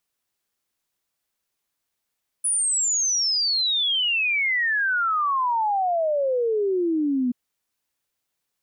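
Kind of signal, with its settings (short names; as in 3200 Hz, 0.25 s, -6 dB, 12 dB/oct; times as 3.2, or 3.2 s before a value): log sweep 10000 Hz -> 240 Hz 4.88 s -19.5 dBFS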